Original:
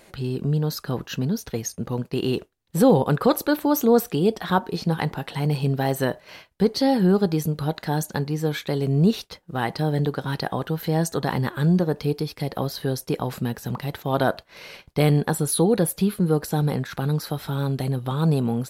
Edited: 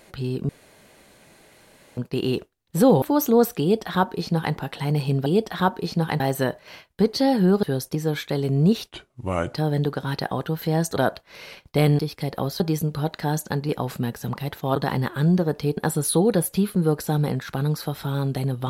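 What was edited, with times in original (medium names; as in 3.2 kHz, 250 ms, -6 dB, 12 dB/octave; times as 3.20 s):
0.49–1.97 s: room tone
3.02–3.57 s: delete
4.16–5.10 s: copy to 5.81 s
7.24–8.33 s: swap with 12.79–13.11 s
9.29–9.75 s: speed 73%
11.17–12.18 s: swap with 14.18–15.21 s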